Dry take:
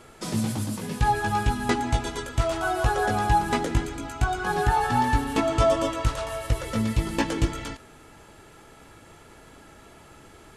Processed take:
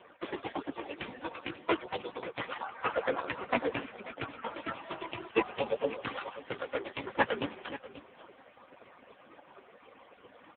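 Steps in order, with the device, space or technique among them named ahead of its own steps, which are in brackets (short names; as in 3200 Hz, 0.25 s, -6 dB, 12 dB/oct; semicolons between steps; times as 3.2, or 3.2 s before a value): median-filter separation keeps percussive; HPF 73 Hz 6 dB/oct; 2.68–3.32 dynamic EQ 1300 Hz, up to +7 dB, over -51 dBFS, Q 0.71; satellite phone (BPF 380–3100 Hz; echo 0.535 s -15 dB; gain +7 dB; AMR-NB 5.9 kbps 8000 Hz)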